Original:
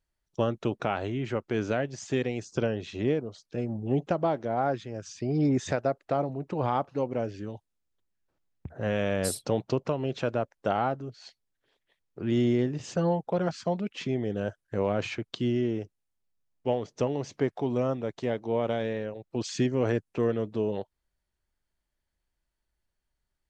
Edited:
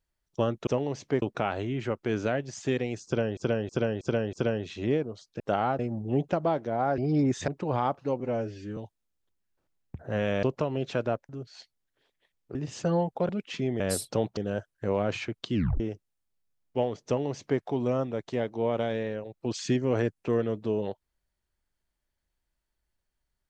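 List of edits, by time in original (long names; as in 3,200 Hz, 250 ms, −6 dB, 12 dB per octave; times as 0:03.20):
0:02.50–0:02.82: repeat, 5 plays
0:04.76–0:05.24: remove
0:05.74–0:06.38: remove
0:07.10–0:07.48: time-stretch 1.5×
0:09.14–0:09.71: move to 0:14.27
0:10.57–0:10.96: move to 0:03.57
0:12.22–0:12.67: remove
0:13.41–0:13.76: remove
0:15.44: tape stop 0.26 s
0:16.96–0:17.51: duplicate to 0:00.67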